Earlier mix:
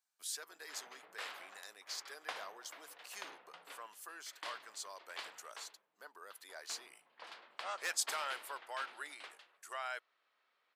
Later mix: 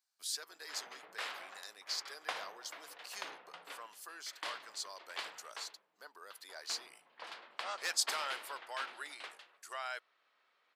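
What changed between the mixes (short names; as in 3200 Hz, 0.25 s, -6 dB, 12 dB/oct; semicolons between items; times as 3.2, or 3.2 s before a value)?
speech: add bell 4600 Hz +7 dB 0.64 oct; background +4.0 dB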